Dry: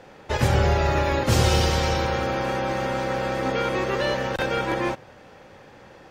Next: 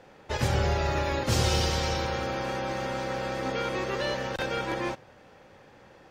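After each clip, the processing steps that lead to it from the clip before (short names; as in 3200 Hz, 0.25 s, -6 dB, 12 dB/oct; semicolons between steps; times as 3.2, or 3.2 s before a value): dynamic EQ 5100 Hz, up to +4 dB, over -42 dBFS, Q 0.9; gain -6 dB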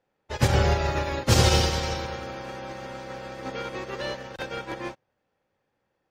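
upward expander 2.5:1, over -43 dBFS; gain +8 dB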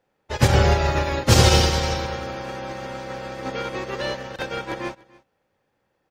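echo 0.29 s -23 dB; gain +4.5 dB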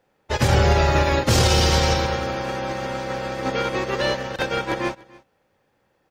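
maximiser +12 dB; gain -7 dB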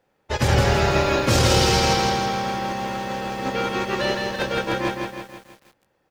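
lo-fi delay 0.163 s, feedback 55%, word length 8-bit, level -3.5 dB; gain -1.5 dB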